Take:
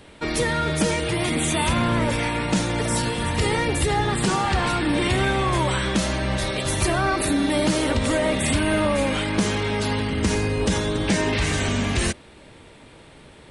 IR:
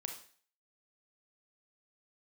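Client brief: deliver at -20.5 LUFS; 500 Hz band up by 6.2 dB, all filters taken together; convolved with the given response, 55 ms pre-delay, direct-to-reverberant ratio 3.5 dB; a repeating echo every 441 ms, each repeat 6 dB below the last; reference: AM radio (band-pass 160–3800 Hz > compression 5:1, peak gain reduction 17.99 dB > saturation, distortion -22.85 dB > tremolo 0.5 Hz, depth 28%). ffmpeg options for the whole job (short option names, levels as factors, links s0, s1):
-filter_complex "[0:a]equalizer=f=500:t=o:g=8,aecho=1:1:441|882|1323|1764|2205|2646:0.501|0.251|0.125|0.0626|0.0313|0.0157,asplit=2[s0][s1];[1:a]atrim=start_sample=2205,adelay=55[s2];[s1][s2]afir=irnorm=-1:irlink=0,volume=0.794[s3];[s0][s3]amix=inputs=2:normalize=0,highpass=160,lowpass=3800,acompressor=threshold=0.0282:ratio=5,asoftclip=threshold=0.0708,tremolo=f=0.5:d=0.28,volume=5.01"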